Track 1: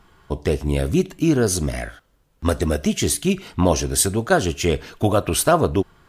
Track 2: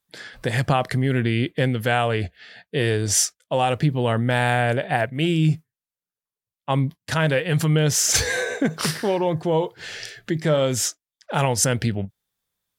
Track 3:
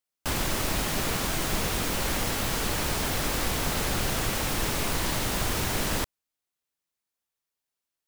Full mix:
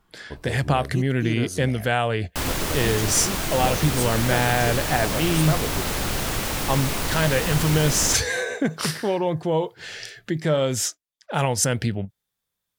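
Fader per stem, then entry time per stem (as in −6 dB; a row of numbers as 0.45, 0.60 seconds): −12.0, −1.5, +2.0 decibels; 0.00, 0.00, 2.10 seconds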